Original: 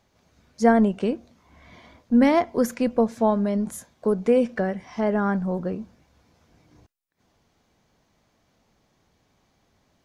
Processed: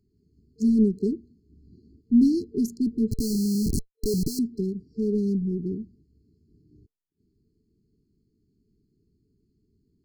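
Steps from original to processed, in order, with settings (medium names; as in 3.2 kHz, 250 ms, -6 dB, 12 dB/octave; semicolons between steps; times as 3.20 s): local Wiener filter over 15 samples; 3.11–4.39 s: Schmitt trigger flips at -37.5 dBFS; FFT band-reject 450–4100 Hz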